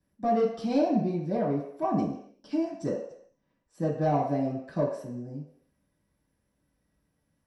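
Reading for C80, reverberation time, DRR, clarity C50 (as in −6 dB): 8.0 dB, non-exponential decay, −6.0 dB, 4.5 dB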